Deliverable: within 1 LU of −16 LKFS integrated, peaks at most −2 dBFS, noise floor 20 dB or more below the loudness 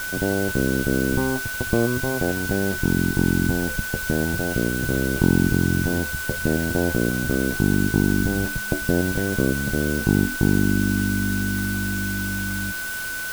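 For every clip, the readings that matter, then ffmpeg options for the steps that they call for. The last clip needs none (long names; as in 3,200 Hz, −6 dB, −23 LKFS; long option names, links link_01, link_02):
interfering tone 1,500 Hz; level of the tone −28 dBFS; background noise floor −29 dBFS; target noise floor −43 dBFS; integrated loudness −22.5 LKFS; sample peak −4.0 dBFS; target loudness −16.0 LKFS
→ -af "bandreject=frequency=1500:width=30"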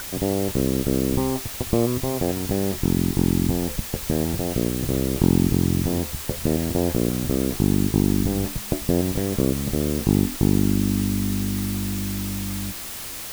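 interfering tone none found; background noise floor −34 dBFS; target noise floor −43 dBFS
→ -af "afftdn=noise_reduction=9:noise_floor=-34"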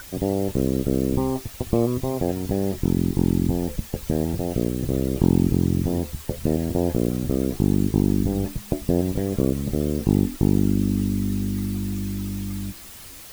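background noise floor −41 dBFS; target noise floor −44 dBFS
→ -af "afftdn=noise_reduction=6:noise_floor=-41"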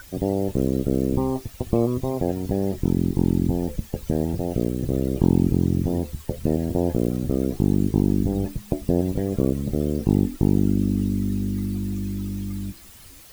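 background noise floor −45 dBFS; integrated loudness −24.0 LKFS; sample peak −5.0 dBFS; target loudness −16.0 LKFS
→ -af "volume=8dB,alimiter=limit=-2dB:level=0:latency=1"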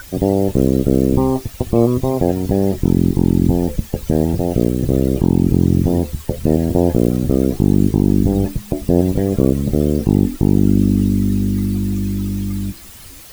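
integrated loudness −16.5 LKFS; sample peak −2.0 dBFS; background noise floor −37 dBFS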